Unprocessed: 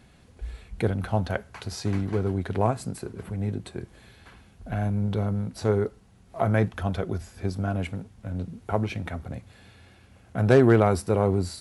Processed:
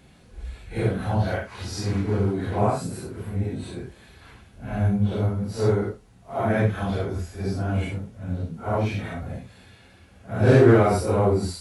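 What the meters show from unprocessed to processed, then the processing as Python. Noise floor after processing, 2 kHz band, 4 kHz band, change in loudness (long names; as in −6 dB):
−53 dBFS, +2.5 dB, +2.5 dB, +2.5 dB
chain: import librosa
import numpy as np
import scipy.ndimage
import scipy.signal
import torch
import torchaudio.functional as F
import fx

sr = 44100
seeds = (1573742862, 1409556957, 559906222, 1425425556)

y = fx.phase_scramble(x, sr, seeds[0], window_ms=200)
y = y * 10.0 ** (2.5 / 20.0)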